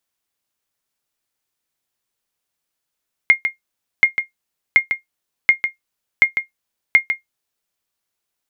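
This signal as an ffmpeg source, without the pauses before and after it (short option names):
-f lavfi -i "aevalsrc='0.841*(sin(2*PI*2130*mod(t,0.73))*exp(-6.91*mod(t,0.73)/0.13)+0.376*sin(2*PI*2130*max(mod(t,0.73)-0.15,0))*exp(-6.91*max(mod(t,0.73)-0.15,0)/0.13))':d=4.38:s=44100"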